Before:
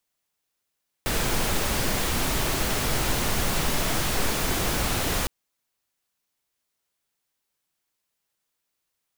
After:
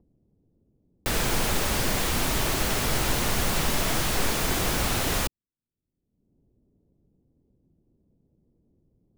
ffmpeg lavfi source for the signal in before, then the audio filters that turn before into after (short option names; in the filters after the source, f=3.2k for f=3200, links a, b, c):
-f lavfi -i "anoisesrc=c=pink:a=0.305:d=4.21:r=44100:seed=1"
-filter_complex "[0:a]acrossover=split=340[a][b];[b]acrusher=bits=6:mix=0:aa=0.000001[c];[a][c]amix=inputs=2:normalize=0,acompressor=mode=upward:threshold=-41dB:ratio=2.5"